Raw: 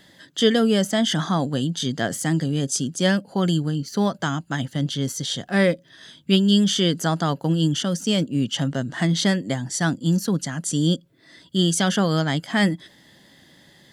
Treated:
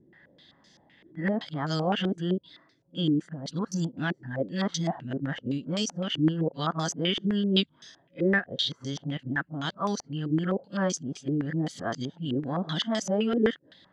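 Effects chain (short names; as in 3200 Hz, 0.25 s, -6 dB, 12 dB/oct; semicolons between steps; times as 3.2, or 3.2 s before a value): whole clip reversed; pre-echo 32 ms -15.5 dB; stepped low-pass 7.8 Hz 350–5800 Hz; gain -9 dB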